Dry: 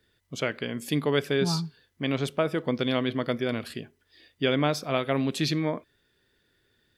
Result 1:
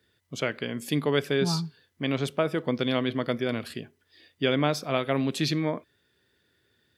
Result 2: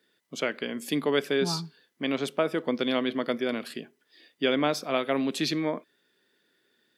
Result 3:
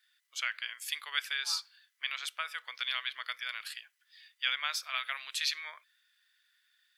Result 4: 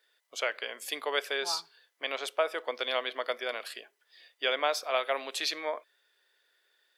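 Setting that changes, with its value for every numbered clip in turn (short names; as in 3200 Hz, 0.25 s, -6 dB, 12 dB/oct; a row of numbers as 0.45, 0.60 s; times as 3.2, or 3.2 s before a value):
HPF, cutoff: 62, 190, 1400, 550 Hz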